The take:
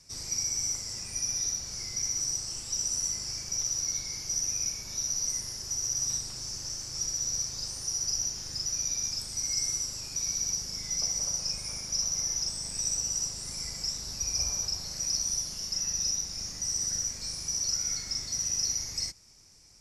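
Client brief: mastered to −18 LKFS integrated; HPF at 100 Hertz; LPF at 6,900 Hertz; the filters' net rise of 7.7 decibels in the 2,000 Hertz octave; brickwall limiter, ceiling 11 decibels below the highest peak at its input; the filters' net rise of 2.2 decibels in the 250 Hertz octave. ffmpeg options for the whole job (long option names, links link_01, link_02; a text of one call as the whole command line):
ffmpeg -i in.wav -af "highpass=100,lowpass=6900,equalizer=frequency=250:width_type=o:gain=3.5,equalizer=frequency=2000:width_type=o:gain=9,volume=16dB,alimiter=limit=-12dB:level=0:latency=1" out.wav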